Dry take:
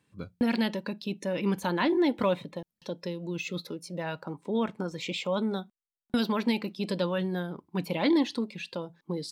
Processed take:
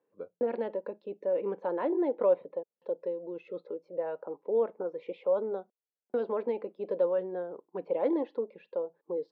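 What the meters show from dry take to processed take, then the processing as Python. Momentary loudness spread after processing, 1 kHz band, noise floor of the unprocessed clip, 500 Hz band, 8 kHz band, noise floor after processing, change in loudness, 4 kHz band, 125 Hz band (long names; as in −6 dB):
11 LU, −5.0 dB, below −85 dBFS, +3.0 dB, below −30 dB, below −85 dBFS, −2.5 dB, below −25 dB, below −15 dB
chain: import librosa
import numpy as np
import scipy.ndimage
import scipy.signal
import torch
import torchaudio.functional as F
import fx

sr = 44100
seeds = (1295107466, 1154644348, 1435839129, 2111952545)

y = fx.ladder_bandpass(x, sr, hz=540.0, resonance_pct=60)
y = fx.air_absorb(y, sr, metres=100.0)
y = y * 10.0 ** (9.0 / 20.0)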